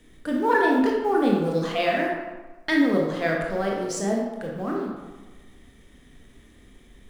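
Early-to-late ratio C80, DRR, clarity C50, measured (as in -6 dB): 4.0 dB, -2.0 dB, 1.5 dB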